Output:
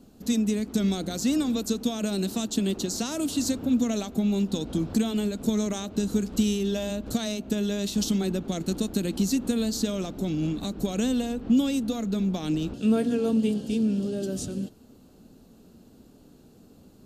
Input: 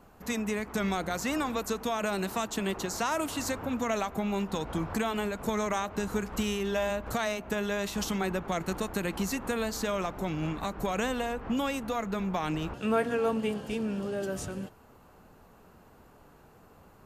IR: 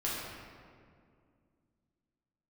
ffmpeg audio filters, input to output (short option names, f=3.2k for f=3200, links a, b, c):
-af "equalizer=f=250:t=o:w=1:g=11,equalizer=f=1k:t=o:w=1:g=-11,equalizer=f=2k:t=o:w=1:g=-9,equalizer=f=4k:t=o:w=1:g=8,equalizer=f=8k:t=o:w=1:g=4"